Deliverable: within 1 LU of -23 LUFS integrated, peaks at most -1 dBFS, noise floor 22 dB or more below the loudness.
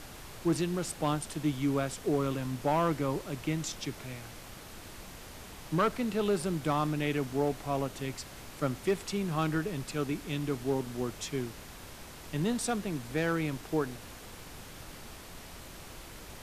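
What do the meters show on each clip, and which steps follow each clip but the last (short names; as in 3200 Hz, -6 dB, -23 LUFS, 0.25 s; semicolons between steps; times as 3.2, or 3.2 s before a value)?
clipped 0.3%; flat tops at -20.5 dBFS; noise floor -48 dBFS; noise floor target -55 dBFS; loudness -32.5 LUFS; peak -20.5 dBFS; loudness target -23.0 LUFS
-> clip repair -20.5 dBFS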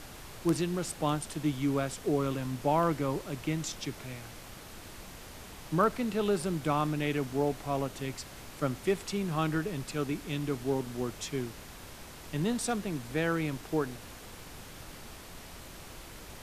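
clipped 0.0%; noise floor -48 dBFS; noise floor target -55 dBFS
-> noise print and reduce 7 dB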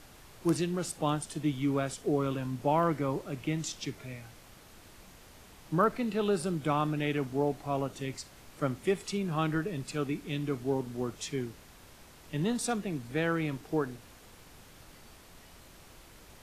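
noise floor -55 dBFS; loudness -32.5 LUFS; peak -12.5 dBFS; loudness target -23.0 LUFS
-> gain +9.5 dB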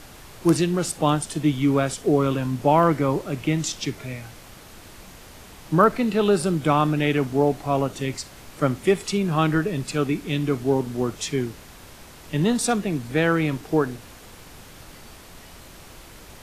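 loudness -23.0 LUFS; peak -3.0 dBFS; noise floor -45 dBFS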